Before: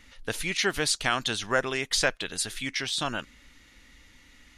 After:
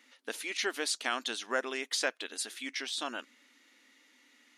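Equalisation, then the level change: brick-wall FIR high-pass 220 Hz; -6.5 dB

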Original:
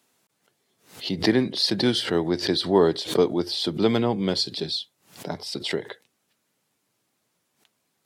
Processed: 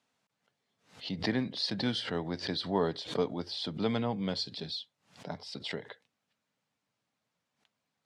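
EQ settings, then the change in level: distance through air 87 m; peaking EQ 360 Hz -11 dB 0.38 oct; -7.0 dB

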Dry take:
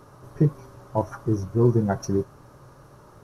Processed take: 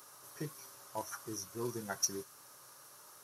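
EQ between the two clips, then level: dynamic bell 670 Hz, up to -5 dB, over -37 dBFS, Q 1; differentiator; +9.0 dB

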